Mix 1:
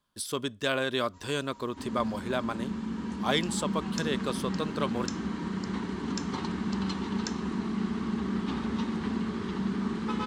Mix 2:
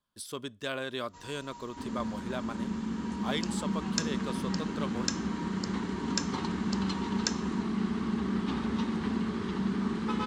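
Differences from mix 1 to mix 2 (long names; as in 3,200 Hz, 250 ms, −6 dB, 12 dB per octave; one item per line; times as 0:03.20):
speech −6.5 dB
first sound +7.0 dB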